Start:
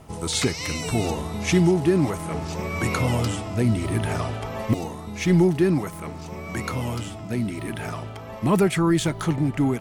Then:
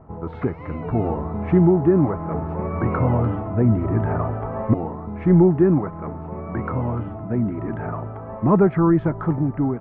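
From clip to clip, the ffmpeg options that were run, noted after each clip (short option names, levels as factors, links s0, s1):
-af "dynaudnorm=f=340:g=5:m=1.58,lowpass=f=1400:w=0.5412,lowpass=f=1400:w=1.3066"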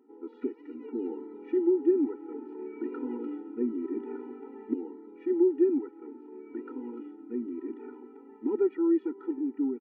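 -af "firequalizer=gain_entry='entry(370,0);entry(650,-16);entry(2500,-4)':delay=0.05:min_phase=1,afftfilt=real='re*eq(mod(floor(b*sr/1024/250),2),1)':imag='im*eq(mod(floor(b*sr/1024/250),2),1)':win_size=1024:overlap=0.75,volume=0.501"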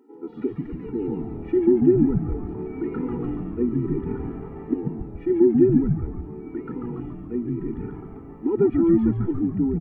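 -filter_complex "[0:a]asplit=8[s0][s1][s2][s3][s4][s5][s6][s7];[s1]adelay=141,afreqshift=-110,volume=0.631[s8];[s2]adelay=282,afreqshift=-220,volume=0.335[s9];[s3]adelay=423,afreqshift=-330,volume=0.178[s10];[s4]adelay=564,afreqshift=-440,volume=0.0944[s11];[s5]adelay=705,afreqshift=-550,volume=0.0495[s12];[s6]adelay=846,afreqshift=-660,volume=0.0263[s13];[s7]adelay=987,afreqshift=-770,volume=0.014[s14];[s0][s8][s9][s10][s11][s12][s13][s14]amix=inputs=8:normalize=0,volume=2"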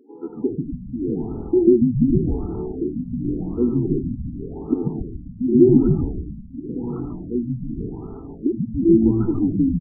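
-af "aecho=1:1:83|253|256:0.224|0.126|0.141,afftfilt=real='re*lt(b*sr/1024,250*pow(1500/250,0.5+0.5*sin(2*PI*0.89*pts/sr)))':imag='im*lt(b*sr/1024,250*pow(1500/250,0.5+0.5*sin(2*PI*0.89*pts/sr)))':win_size=1024:overlap=0.75,volume=1.5"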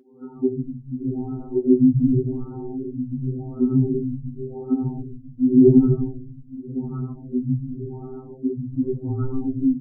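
-af "afftfilt=real='re*2.45*eq(mod(b,6),0)':imag='im*2.45*eq(mod(b,6),0)':win_size=2048:overlap=0.75"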